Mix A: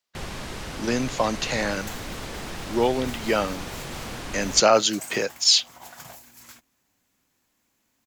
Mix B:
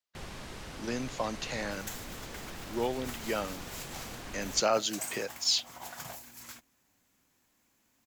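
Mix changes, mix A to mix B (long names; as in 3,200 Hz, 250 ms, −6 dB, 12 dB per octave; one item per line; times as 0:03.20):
speech −10.0 dB
first sound −9.0 dB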